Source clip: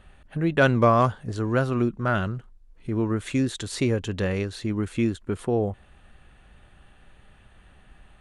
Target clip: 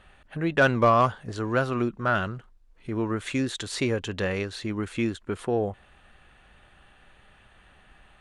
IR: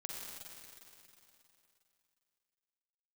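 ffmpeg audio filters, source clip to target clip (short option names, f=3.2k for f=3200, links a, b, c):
-filter_complex "[0:a]volume=9.5dB,asoftclip=hard,volume=-9.5dB,asplit=2[a][b];[b]highpass=f=720:p=1,volume=6dB,asoftclip=type=tanh:threshold=-9.5dB[c];[a][c]amix=inputs=2:normalize=0,lowpass=f=5.5k:p=1,volume=-6dB"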